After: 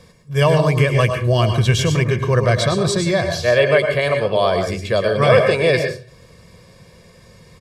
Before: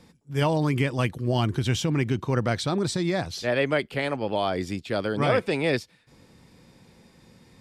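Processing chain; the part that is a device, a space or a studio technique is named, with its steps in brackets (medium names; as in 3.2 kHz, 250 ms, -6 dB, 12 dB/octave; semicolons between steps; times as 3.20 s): microphone above a desk (comb 1.8 ms, depth 77%; reverberation RT60 0.40 s, pre-delay 101 ms, DRR 5 dB); trim +6 dB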